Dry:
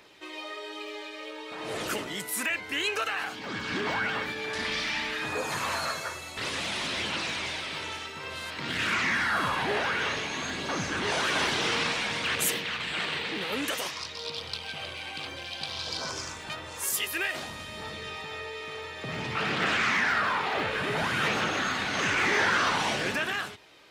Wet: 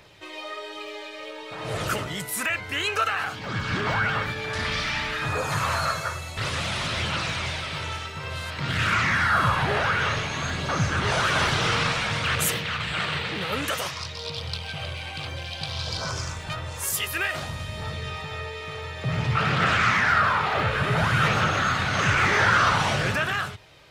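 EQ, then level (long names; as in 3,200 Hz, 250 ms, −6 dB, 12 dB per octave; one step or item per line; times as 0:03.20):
dynamic equaliser 1,300 Hz, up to +7 dB, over −46 dBFS, Q 3.4
low shelf with overshoot 180 Hz +11.5 dB, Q 1.5
parametric band 590 Hz +4 dB 0.64 octaves
+2.0 dB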